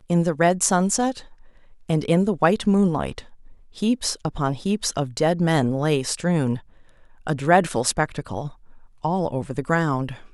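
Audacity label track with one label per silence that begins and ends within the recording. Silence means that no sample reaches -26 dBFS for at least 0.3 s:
1.110000	1.890000	silence
3.190000	3.820000	silence
6.570000	7.270000	silence
8.470000	9.050000	silence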